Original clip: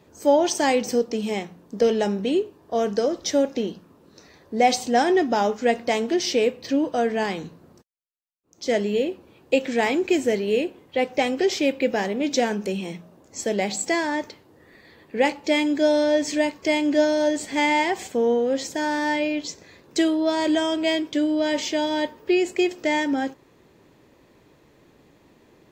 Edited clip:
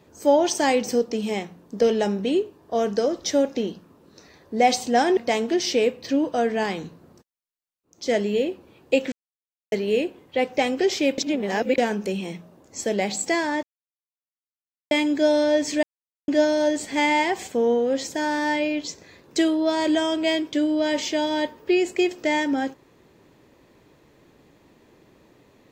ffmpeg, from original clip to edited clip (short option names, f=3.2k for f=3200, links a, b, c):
-filter_complex "[0:a]asplit=10[a][b][c][d][e][f][g][h][i][j];[a]atrim=end=5.172[k];[b]atrim=start=5.768:end=9.72,asetpts=PTS-STARTPTS,afade=t=out:st=3.948:d=0.004:c=hsin[l];[c]atrim=start=9.72:end=10.32,asetpts=PTS-STARTPTS,volume=0[m];[d]atrim=start=10.32:end=11.782,asetpts=PTS-STARTPTS,afade=t=in:d=0.004:c=hsin[n];[e]atrim=start=11.778:end=12.382,asetpts=PTS-STARTPTS,areverse[o];[f]atrim=start=12.378:end=14.23,asetpts=PTS-STARTPTS,afade=t=out:st=1.848:d=0.004:c=hsin[p];[g]atrim=start=14.23:end=15.51,asetpts=PTS-STARTPTS,volume=0[q];[h]atrim=start=15.51:end=16.43,asetpts=PTS-STARTPTS,afade=t=in:d=0.004:c=hsin,afade=t=out:st=0.916:d=0.004:c=hsin[r];[i]atrim=start=16.43:end=16.88,asetpts=PTS-STARTPTS,volume=0[s];[j]atrim=start=16.88,asetpts=PTS-STARTPTS,afade=t=in:d=0.004:c=hsin[t];[l][m][n]concat=n=3:v=0:a=1[u];[k][u]acrossfade=d=0.004:c1=hsin:c2=hsin[v];[v][o]acrossfade=d=0.004:c1=hsin:c2=hsin[w];[p][q][r][s][t]concat=n=5:v=0:a=1[x];[w][x]acrossfade=d=0.004:c1=hsin:c2=hsin"